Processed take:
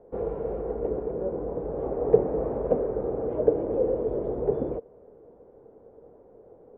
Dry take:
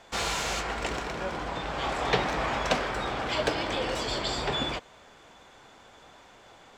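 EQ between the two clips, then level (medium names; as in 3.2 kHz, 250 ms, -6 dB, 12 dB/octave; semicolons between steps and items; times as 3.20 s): resonant low-pass 460 Hz, resonance Q 4.9; distance through air 460 m; 0.0 dB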